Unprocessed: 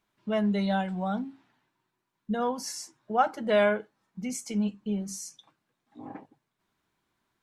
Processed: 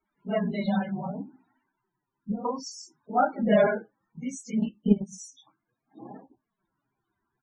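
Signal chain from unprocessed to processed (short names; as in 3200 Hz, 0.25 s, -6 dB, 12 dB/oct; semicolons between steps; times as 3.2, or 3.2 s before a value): phase scrambler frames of 50 ms; 1.03–2.45 treble ducked by the level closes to 340 Hz, closed at -26 dBFS; 3.15–3.67 low shelf 260 Hz +11.5 dB; 4.61–5.18 transient shaper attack +10 dB, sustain -9 dB; flange 0.63 Hz, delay 3 ms, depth 6.9 ms, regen -29%; doubler 15 ms -13.5 dB; loudest bins only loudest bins 32; gain +3 dB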